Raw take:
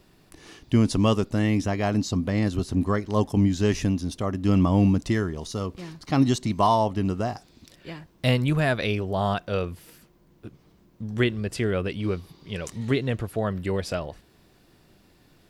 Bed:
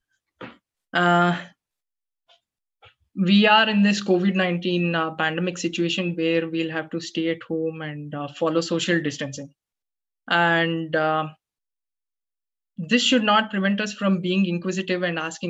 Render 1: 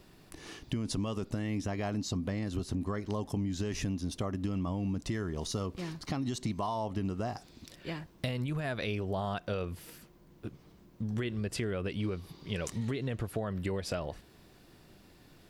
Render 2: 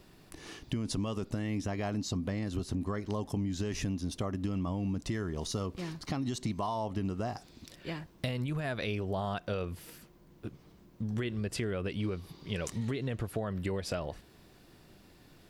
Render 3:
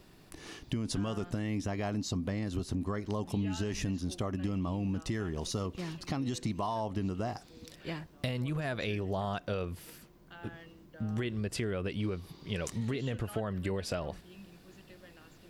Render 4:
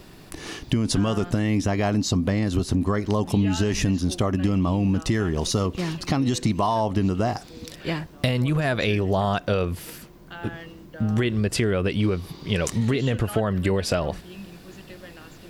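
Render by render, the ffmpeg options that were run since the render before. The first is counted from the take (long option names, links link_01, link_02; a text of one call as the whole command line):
ffmpeg -i in.wav -af "alimiter=limit=-17.5dB:level=0:latency=1:release=54,acompressor=threshold=-30dB:ratio=10" out.wav
ffmpeg -i in.wav -af anull out.wav
ffmpeg -i in.wav -i bed.wav -filter_complex "[1:a]volume=-31.5dB[link_01];[0:a][link_01]amix=inputs=2:normalize=0" out.wav
ffmpeg -i in.wav -af "volume=11.5dB" out.wav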